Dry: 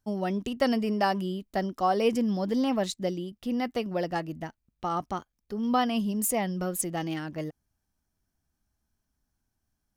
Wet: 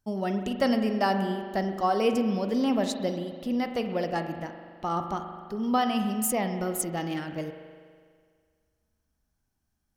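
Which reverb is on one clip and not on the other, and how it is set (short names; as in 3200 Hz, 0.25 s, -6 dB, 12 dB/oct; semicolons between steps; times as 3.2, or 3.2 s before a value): spring tank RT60 1.9 s, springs 41 ms, chirp 25 ms, DRR 6.5 dB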